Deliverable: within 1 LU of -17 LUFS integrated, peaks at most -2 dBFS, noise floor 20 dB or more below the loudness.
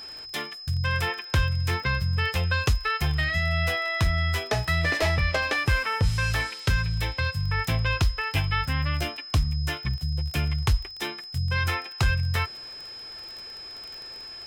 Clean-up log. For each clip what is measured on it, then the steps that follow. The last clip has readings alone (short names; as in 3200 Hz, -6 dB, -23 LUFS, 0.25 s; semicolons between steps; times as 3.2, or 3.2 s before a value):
ticks 23/s; steady tone 5100 Hz; tone level -38 dBFS; loudness -26.0 LUFS; peak -12.5 dBFS; loudness target -17.0 LUFS
-> de-click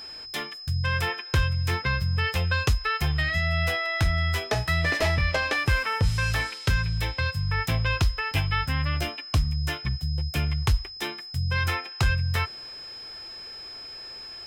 ticks 0.069/s; steady tone 5100 Hz; tone level -38 dBFS
-> notch 5100 Hz, Q 30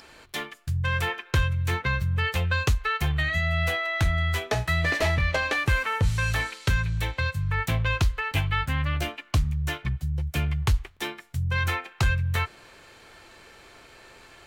steady tone none; loudness -26.5 LUFS; peak -12.5 dBFS; loudness target -17.0 LUFS
-> gain +9.5 dB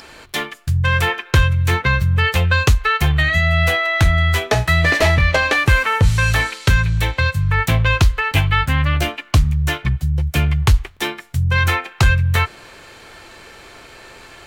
loudness -17.0 LUFS; peak -3.0 dBFS; noise floor -42 dBFS